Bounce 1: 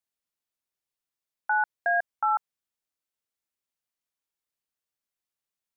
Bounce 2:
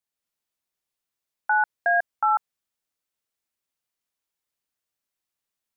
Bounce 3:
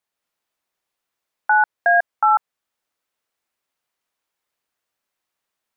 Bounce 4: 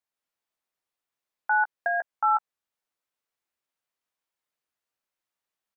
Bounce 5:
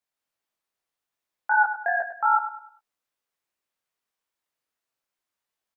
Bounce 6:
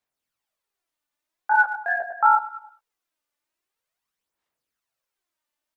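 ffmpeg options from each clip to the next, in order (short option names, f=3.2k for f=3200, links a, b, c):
-af "dynaudnorm=f=120:g=3:m=3.5dB"
-af "equalizer=f=970:w=0.31:g=8.5,alimiter=limit=-9.5dB:level=0:latency=1:release=421,volume=1.5dB"
-filter_complex "[0:a]asplit=2[a][b];[b]adelay=15,volume=-10dB[c];[a][c]amix=inputs=2:normalize=0,volume=-8.5dB"
-filter_complex "[0:a]flanger=delay=17.5:depth=7.3:speed=2.5,asplit=2[a][b];[b]aecho=0:1:101|202|303|404:0.282|0.104|0.0386|0.0143[c];[a][c]amix=inputs=2:normalize=0,volume=4.5dB"
-af "aphaser=in_gain=1:out_gain=1:delay=3.4:decay=0.5:speed=0.45:type=sinusoidal"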